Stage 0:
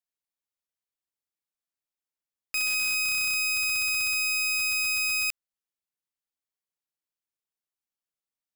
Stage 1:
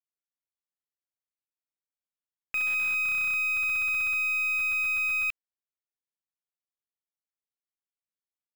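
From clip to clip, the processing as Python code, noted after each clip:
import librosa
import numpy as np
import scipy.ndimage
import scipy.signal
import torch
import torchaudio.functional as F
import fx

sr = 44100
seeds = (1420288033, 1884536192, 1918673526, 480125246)

y = fx.band_shelf(x, sr, hz=7600.0, db=-9.0, octaves=1.7)
y = fx.leveller(y, sr, passes=5)
y = fx.bass_treble(y, sr, bass_db=0, treble_db=-14)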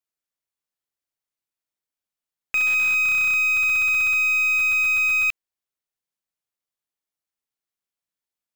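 y = fx.leveller(x, sr, passes=1)
y = y * librosa.db_to_amplitude(6.5)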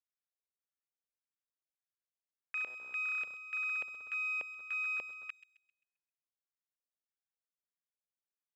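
y = fx.filter_lfo_bandpass(x, sr, shape='square', hz=1.7, low_hz=530.0, high_hz=1600.0, q=2.4)
y = fx.echo_wet_highpass(y, sr, ms=132, feedback_pct=36, hz=4200.0, wet_db=-6.5)
y = y * librosa.db_to_amplitude(-8.0)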